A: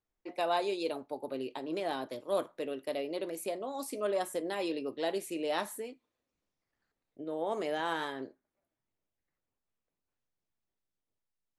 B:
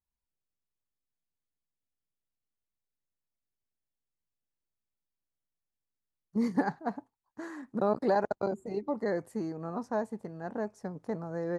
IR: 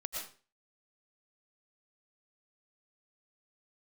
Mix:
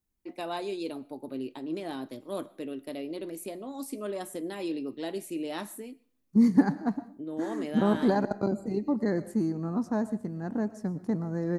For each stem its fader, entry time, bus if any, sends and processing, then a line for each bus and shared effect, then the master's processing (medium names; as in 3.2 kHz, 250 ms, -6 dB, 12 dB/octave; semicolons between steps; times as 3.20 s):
-4.0 dB, 0.00 s, send -21.5 dB, treble shelf 9.9 kHz +7 dB
-2.0 dB, 0.00 s, send -11.5 dB, treble shelf 5.9 kHz +8.5 dB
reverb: on, RT60 0.40 s, pre-delay 75 ms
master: resonant low shelf 380 Hz +7.5 dB, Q 1.5